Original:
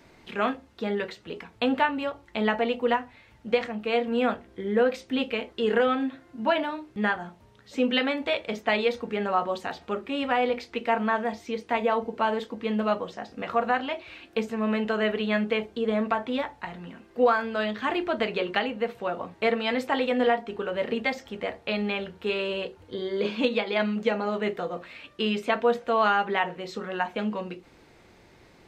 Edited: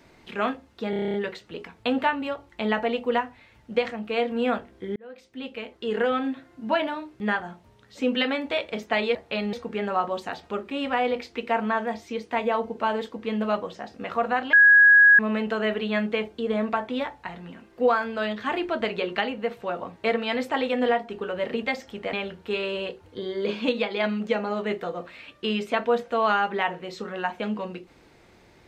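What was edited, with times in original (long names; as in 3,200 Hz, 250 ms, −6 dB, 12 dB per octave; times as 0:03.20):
0:00.90: stutter 0.03 s, 9 plays
0:04.72–0:06.01: fade in
0:13.91–0:14.57: beep over 1,660 Hz −10.5 dBFS
0:21.51–0:21.89: move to 0:08.91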